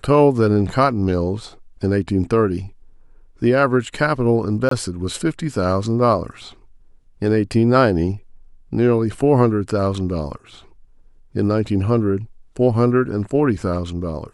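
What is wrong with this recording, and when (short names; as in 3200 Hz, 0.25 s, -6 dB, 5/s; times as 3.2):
4.69–4.71 gap 23 ms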